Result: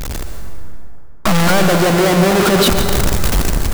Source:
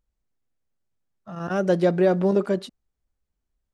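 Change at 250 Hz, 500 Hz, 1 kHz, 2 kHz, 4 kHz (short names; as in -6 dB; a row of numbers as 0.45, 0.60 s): +10.0, +7.0, +15.5, +17.5, +25.0 dB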